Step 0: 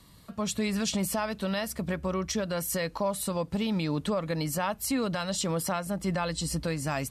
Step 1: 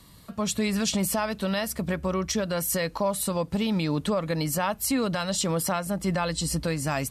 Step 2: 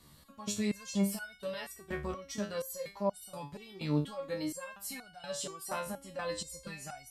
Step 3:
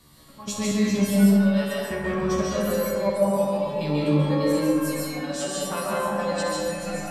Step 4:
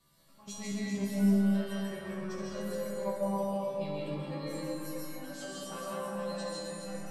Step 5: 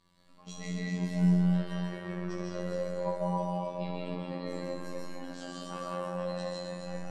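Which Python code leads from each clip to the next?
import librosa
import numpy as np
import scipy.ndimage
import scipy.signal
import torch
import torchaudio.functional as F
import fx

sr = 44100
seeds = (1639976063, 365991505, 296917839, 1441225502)

y1 = fx.high_shelf(x, sr, hz=9800.0, db=3.5)
y1 = y1 * 10.0 ** (3.0 / 20.0)
y2 = fx.rider(y1, sr, range_db=4, speed_s=2.0)
y2 = fx.resonator_held(y2, sr, hz=4.2, low_hz=74.0, high_hz=740.0)
y3 = fx.echo_feedback(y2, sr, ms=65, feedback_pct=42, wet_db=-9.0)
y3 = fx.rev_freeverb(y3, sr, rt60_s=2.8, hf_ratio=0.3, predelay_ms=100, drr_db=-6.5)
y3 = y3 * 10.0 ** (4.5 / 20.0)
y4 = fx.resonator_bank(y3, sr, root=48, chord='major', decay_s=0.24)
y4 = y4 + 10.0 ** (-7.0 / 20.0) * np.pad(y4, (int(261 * sr / 1000.0), 0))[:len(y4)]
y5 = fx.robotise(y4, sr, hz=88.9)
y5 = fx.air_absorb(y5, sr, metres=85.0)
y5 = y5 * 10.0 ** (4.0 / 20.0)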